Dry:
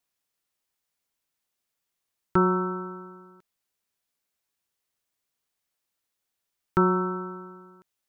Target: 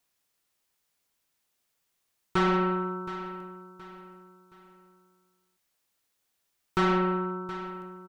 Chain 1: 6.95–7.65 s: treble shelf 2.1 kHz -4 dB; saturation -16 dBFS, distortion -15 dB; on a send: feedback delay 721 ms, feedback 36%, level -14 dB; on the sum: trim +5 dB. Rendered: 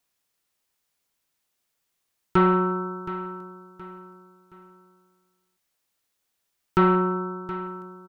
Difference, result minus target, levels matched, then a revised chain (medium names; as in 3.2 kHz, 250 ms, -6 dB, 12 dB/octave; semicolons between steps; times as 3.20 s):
saturation: distortion -9 dB
6.95–7.65 s: treble shelf 2.1 kHz -4 dB; saturation -26 dBFS, distortion -6 dB; on a send: feedback delay 721 ms, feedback 36%, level -14 dB; on the sum: trim +5 dB